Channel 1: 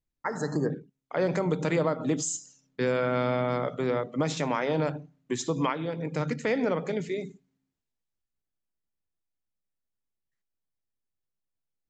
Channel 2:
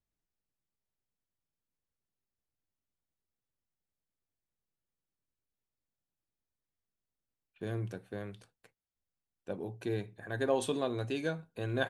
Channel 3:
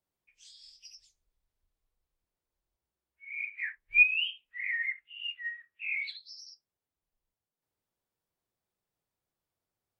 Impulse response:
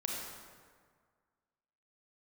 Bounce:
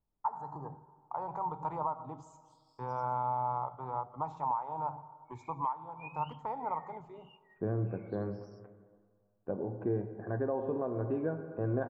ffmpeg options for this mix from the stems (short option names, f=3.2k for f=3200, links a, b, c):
-filter_complex "[0:a]firequalizer=gain_entry='entry(100,0);entry(190,-18);entry(330,-16);entry(560,-13);entry(880,14);entry(1700,-24);entry(5000,-30)':delay=0.05:min_phase=1,volume=-4.5dB,asplit=2[a][b];[b]volume=-17dB[c];[1:a]lowpass=f=1.2k:w=0.5412,lowpass=f=1.2k:w=1.3066,volume=2.5dB,asplit=3[d][e][f];[e]volume=-7dB[g];[2:a]aderivative,adelay=2050,volume=-18dB[h];[f]apad=whole_len=531160[i];[h][i]sidechaincompress=threshold=-39dB:ratio=8:attack=16:release=480[j];[3:a]atrim=start_sample=2205[k];[c][g]amix=inputs=2:normalize=0[l];[l][k]afir=irnorm=-1:irlink=0[m];[a][d][j][m]amix=inputs=4:normalize=0,alimiter=limit=-23dB:level=0:latency=1:release=491"